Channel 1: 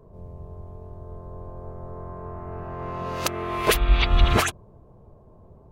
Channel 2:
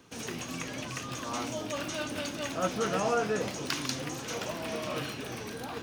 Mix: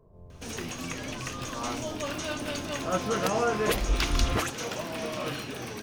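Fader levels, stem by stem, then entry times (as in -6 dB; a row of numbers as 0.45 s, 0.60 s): -8.5 dB, +1.5 dB; 0.00 s, 0.30 s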